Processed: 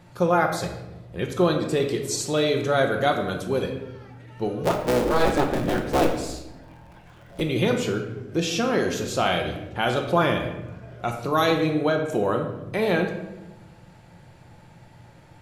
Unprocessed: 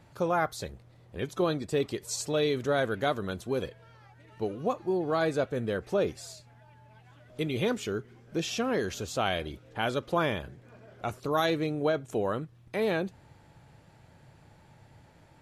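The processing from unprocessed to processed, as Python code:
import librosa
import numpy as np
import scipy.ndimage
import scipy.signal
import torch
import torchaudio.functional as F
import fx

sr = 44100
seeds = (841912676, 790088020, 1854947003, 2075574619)

y = fx.cycle_switch(x, sr, every=3, mode='inverted', at=(4.63, 7.4), fade=0.02)
y = fx.room_shoebox(y, sr, seeds[0], volume_m3=440.0, walls='mixed', distance_m=0.9)
y = y * 10.0 ** (5.0 / 20.0)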